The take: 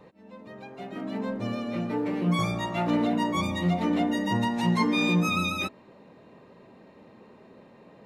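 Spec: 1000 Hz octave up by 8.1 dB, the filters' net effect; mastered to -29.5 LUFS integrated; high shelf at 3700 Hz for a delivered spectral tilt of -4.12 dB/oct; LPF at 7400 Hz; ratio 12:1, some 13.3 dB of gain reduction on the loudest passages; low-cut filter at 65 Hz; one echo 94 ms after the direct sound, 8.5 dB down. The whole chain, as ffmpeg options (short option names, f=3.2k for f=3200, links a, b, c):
-af "highpass=65,lowpass=7.4k,equalizer=f=1k:t=o:g=9,highshelf=f=3.7k:g=6.5,acompressor=threshold=-28dB:ratio=12,aecho=1:1:94:0.376,volume=2dB"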